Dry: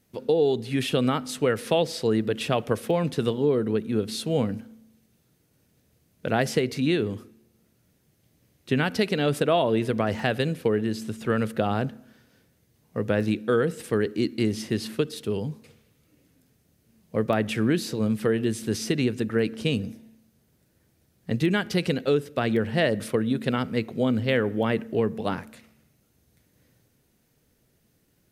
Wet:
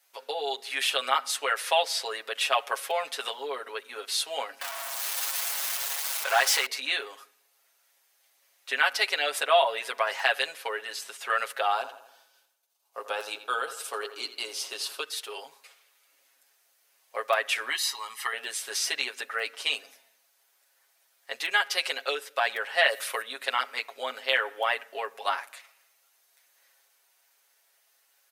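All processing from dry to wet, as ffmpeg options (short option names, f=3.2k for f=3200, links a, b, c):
-filter_complex "[0:a]asettb=1/sr,asplit=3[a][b][c];[a]atrim=end=4.614[d];[b]atrim=start=4.61:end=6.66,asetpts=PTS-STARTPTS,afade=t=in:d=0.004:c=qsin,afade=t=out:st=2.046:d=0.004:c=qsin,aeval=exprs='val(0)+0.5*0.0501*sgn(val(0))':c=same,equalizer=f=340:t=o:w=2.5:g=-4.5[e];[c]atrim=start=6.656[f];[d][e]acrossfade=d=0.004:c1=hsin:c2=qsin[g];[g][f]acrossfade=d=0.004:c1=qsin:c2=hsin,asettb=1/sr,asplit=3[h][i][j];[h]atrim=end=11.754[k];[i]atrim=start=11.75:end=15.03,asetpts=PTS-STARTPTS,afade=t=in:d=0.004:c=qsin,afade=t=out:st=3.276:d=0.004:c=qsin,agate=range=-33dB:threshold=-59dB:ratio=3:release=100:detection=peak,equalizer=f=1.9k:w=3.2:g=-14,asplit=2[l][m];[m]adelay=84,lowpass=f=3.2k:p=1,volume=-11dB,asplit=2[n][o];[o]adelay=84,lowpass=f=3.2k:p=1,volume=0.51,asplit=2[p][q];[q]adelay=84,lowpass=f=3.2k:p=1,volume=0.51,asplit=2[r][s];[s]adelay=84,lowpass=f=3.2k:p=1,volume=0.51,asplit=2[t][u];[u]adelay=84,lowpass=f=3.2k:p=1,volume=0.51[v];[l][n][p][r][t][v]amix=inputs=6:normalize=0,atrim=end_sample=144648[w];[j]atrim=start=15.026[x];[k][w]acrossfade=d=0.004:c1=hsin:c2=qsin[y];[y][x]acrossfade=d=0.004:c1=qsin:c2=hsin,asettb=1/sr,asplit=3[z][aa][ab];[z]atrim=end=17.694[ac];[aa]atrim=start=17.69:end=18.33,asetpts=PTS-STARTPTS,afade=t=in:d=0.004:c=qsin,afade=t=out:st=0.636:d=0.004:c=qsin,highpass=f=430:p=1,equalizer=f=600:w=5:g=-12.5,aecho=1:1:1:0.7,atrim=end_sample=28224[ad];[ab]atrim=start=18.326[ae];[ac][ad]acrossfade=d=0.004:c1=hsin:c2=qsin[af];[af][ae]acrossfade=d=0.004:c1=qsin:c2=hsin,asettb=1/sr,asplit=3[ag][ah][ai];[ag]atrim=end=22.814[aj];[ah]atrim=start=22.81:end=23.22,asetpts=PTS-STARTPTS,afade=t=in:d=0.004:c=qsin,afade=t=out:st=0.406:d=0.004:c=qsin,acrossover=split=3300[ak][al];[al]acompressor=threshold=-52dB:ratio=4:attack=1:release=60[am];[ak][am]amix=inputs=2:normalize=0,aemphasis=mode=production:type=75kf[an];[ai]atrim=start=23.216[ao];[aj][an]acrossfade=d=0.004:c1=hsin:c2=qsin[ap];[ap][ao]acrossfade=d=0.004:c1=qsin:c2=hsin,highpass=f=750:w=0.5412,highpass=f=750:w=1.3066,aecho=1:1:7.3:0.9,volume=2.5dB"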